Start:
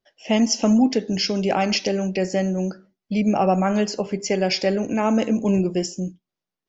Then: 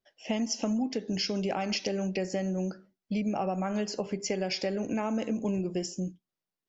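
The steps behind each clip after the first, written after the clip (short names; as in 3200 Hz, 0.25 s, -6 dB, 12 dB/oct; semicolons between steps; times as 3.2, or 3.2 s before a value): compressor, threshold -22 dBFS, peak gain reduction 9 dB; gain -5 dB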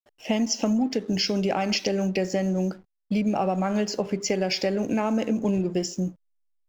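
backlash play -49.5 dBFS; gain +6 dB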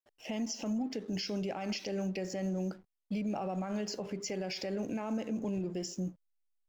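limiter -21.5 dBFS, peak gain reduction 9 dB; gain -7 dB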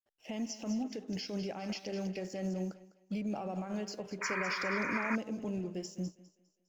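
thinning echo 0.203 s, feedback 49%, high-pass 220 Hz, level -11 dB; painted sound noise, 4.21–5.16, 910–2500 Hz -35 dBFS; upward expander 1.5:1, over -55 dBFS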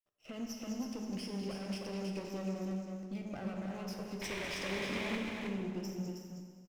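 minimum comb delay 0.36 ms; echo 0.318 s -5 dB; plate-style reverb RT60 1.8 s, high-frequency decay 0.9×, DRR 3.5 dB; gain -4.5 dB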